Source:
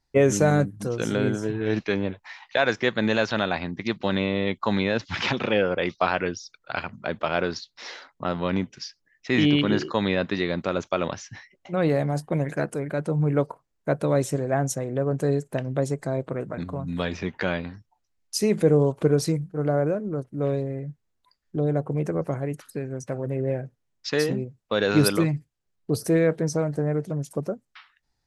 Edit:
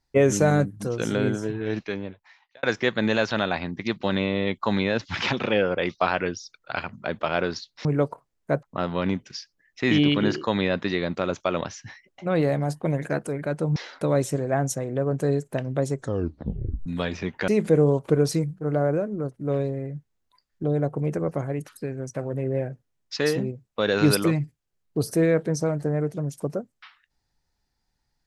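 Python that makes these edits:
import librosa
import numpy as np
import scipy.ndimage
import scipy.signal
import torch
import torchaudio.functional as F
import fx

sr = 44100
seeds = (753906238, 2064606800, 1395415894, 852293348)

y = fx.edit(x, sr, fx.fade_out_span(start_s=1.31, length_s=1.32),
    fx.swap(start_s=7.85, length_s=0.25, other_s=13.23, other_length_s=0.78),
    fx.tape_stop(start_s=15.92, length_s=0.94),
    fx.cut(start_s=17.48, length_s=0.93), tone=tone)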